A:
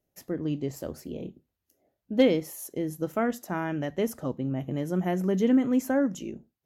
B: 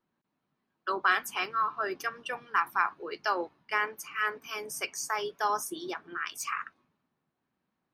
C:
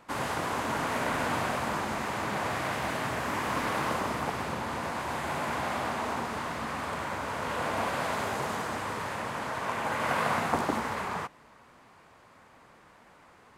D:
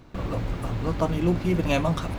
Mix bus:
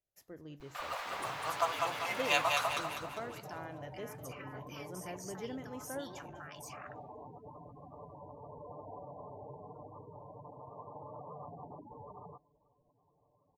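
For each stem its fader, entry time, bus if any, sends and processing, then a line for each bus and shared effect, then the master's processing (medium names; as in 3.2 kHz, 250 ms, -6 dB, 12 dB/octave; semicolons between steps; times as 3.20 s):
-13.0 dB, 0.00 s, no bus, no send, echo send -17.5 dB, none
-11.5 dB, 0.25 s, bus A, no send, no echo send, compressor with a negative ratio -37 dBFS, ratio -1
-7.5 dB, 1.10 s, bus A, no send, no echo send, Bessel low-pass 530 Hz, order 2; spectral gate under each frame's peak -10 dB strong; comb 6.8 ms
0.0 dB, 0.60 s, no bus, no send, echo send -3.5 dB, high-pass 720 Hz 24 dB/octave; vibrato 1.2 Hz 90 cents
bus A: 0.0 dB, peak limiter -36 dBFS, peak gain reduction 10 dB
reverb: none
echo: feedback delay 199 ms, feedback 46%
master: peaking EQ 230 Hz -10.5 dB 1.4 oct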